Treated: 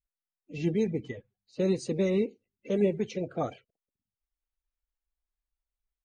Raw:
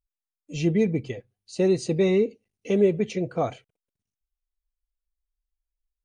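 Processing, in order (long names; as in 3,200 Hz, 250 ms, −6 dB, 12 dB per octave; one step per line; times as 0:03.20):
spectral magnitudes quantised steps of 30 dB
low-pass that shuts in the quiet parts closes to 2,500 Hz, open at −18.5 dBFS
level −5 dB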